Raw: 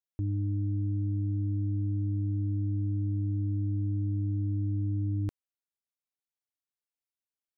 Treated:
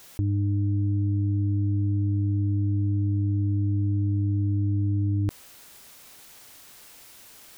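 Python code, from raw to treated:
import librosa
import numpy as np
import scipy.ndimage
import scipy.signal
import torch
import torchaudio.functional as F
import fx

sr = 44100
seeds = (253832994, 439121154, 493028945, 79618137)

y = fx.env_flatten(x, sr, amount_pct=70)
y = y * librosa.db_to_amplitude(5.5)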